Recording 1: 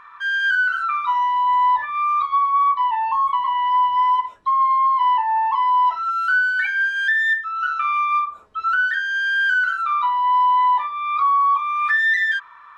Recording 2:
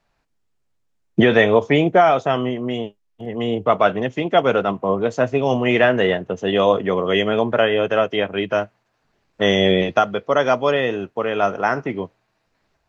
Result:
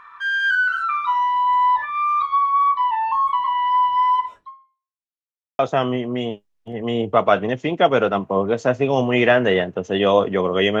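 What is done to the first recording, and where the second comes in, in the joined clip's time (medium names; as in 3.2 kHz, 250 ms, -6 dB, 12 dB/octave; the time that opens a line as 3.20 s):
recording 1
4.37–5.02 s: fade out exponential
5.02–5.59 s: mute
5.59 s: go over to recording 2 from 2.12 s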